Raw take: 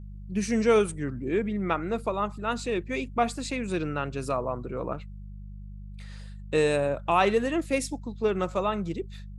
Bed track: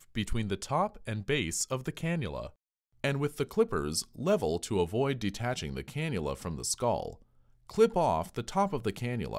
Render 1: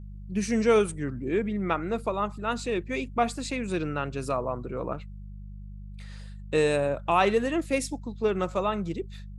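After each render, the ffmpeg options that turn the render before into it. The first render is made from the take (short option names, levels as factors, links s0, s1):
-af anull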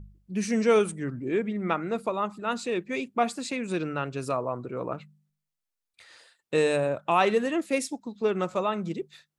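-af "bandreject=f=50:t=h:w=4,bandreject=f=100:t=h:w=4,bandreject=f=150:t=h:w=4,bandreject=f=200:t=h:w=4"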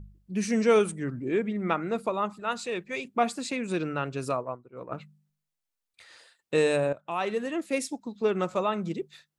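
-filter_complex "[0:a]asettb=1/sr,asplit=3[s0][s1][s2];[s0]atrim=end=2.334[s3];[s1]atrim=start=2.33:end=3.05,asetpts=PTS-STARTPTS,afade=t=in:d=0.004:c=qsin,afade=t=out:st=0.716:d=0.004:c=qsin,equalizer=f=280:w=1.5:g=-9[s4];[s2]atrim=start=3.046[s5];[s3][s4]acrossfade=d=0.004:c1=hsin:c2=qsin[s6];[s6][s5]acrossfade=d=0.004:c1=qsin:c2=hsin,asplit=3[s7][s8][s9];[s7]afade=t=out:st=4.32:d=0.02[s10];[s8]agate=range=0.0224:threshold=0.0501:ratio=3:release=100:detection=peak,afade=t=in:st=4.32:d=0.02,afade=t=out:st=4.91:d=0.02[s11];[s9]afade=t=in:st=4.91:d=0.02[s12];[s10][s11][s12]amix=inputs=3:normalize=0,asplit=2[s13][s14];[s13]atrim=end=6.93,asetpts=PTS-STARTPTS,afade=t=out:st=6.926:d=0.004:c=hsin:silence=0.211349[s15];[s14]atrim=start=6.93,asetpts=PTS-STARTPTS,afade=t=in:d=1.09:silence=0.211349[s16];[s15][s16]concat=n=2:v=0:a=1"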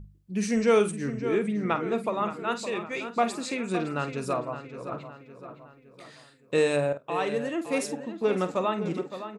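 -filter_complex "[0:a]asplit=2[s0][s1];[s1]adelay=48,volume=0.266[s2];[s0][s2]amix=inputs=2:normalize=0,asplit=2[s3][s4];[s4]adelay=564,lowpass=f=3700:p=1,volume=0.299,asplit=2[s5][s6];[s6]adelay=564,lowpass=f=3700:p=1,volume=0.5,asplit=2[s7][s8];[s8]adelay=564,lowpass=f=3700:p=1,volume=0.5,asplit=2[s9][s10];[s10]adelay=564,lowpass=f=3700:p=1,volume=0.5,asplit=2[s11][s12];[s12]adelay=564,lowpass=f=3700:p=1,volume=0.5[s13];[s5][s7][s9][s11][s13]amix=inputs=5:normalize=0[s14];[s3][s14]amix=inputs=2:normalize=0"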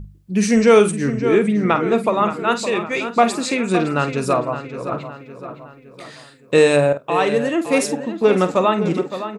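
-af "volume=3.35,alimiter=limit=0.708:level=0:latency=1"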